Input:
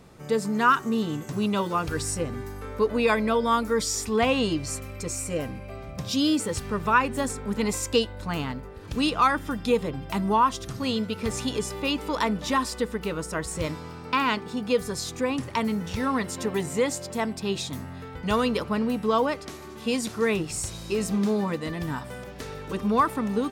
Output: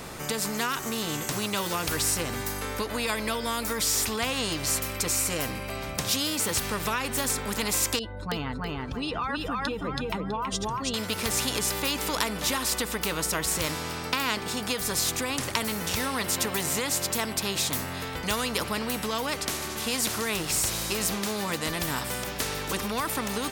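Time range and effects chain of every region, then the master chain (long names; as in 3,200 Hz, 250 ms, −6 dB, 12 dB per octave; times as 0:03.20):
0:07.99–0:10.94: expanding power law on the bin magnitudes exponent 1.8 + repeating echo 326 ms, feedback 20%, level −4 dB
whole clip: high-shelf EQ 11,000 Hz +8 dB; downward compressor, threshold −24 dBFS; every bin compressed towards the loudest bin 2 to 1; level +6.5 dB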